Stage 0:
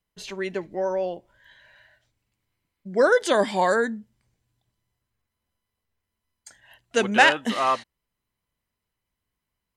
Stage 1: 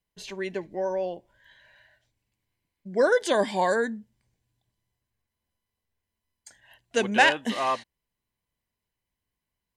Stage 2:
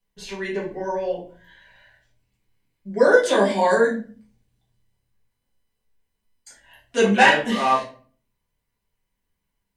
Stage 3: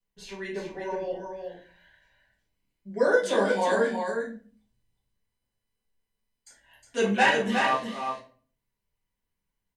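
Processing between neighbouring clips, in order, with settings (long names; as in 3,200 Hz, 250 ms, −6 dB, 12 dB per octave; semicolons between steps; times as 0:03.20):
notch filter 1,300 Hz, Q 5.9; level −2.5 dB
rectangular room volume 31 cubic metres, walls mixed, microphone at 1.1 metres; level −2 dB
single-tap delay 362 ms −5.5 dB; level −7 dB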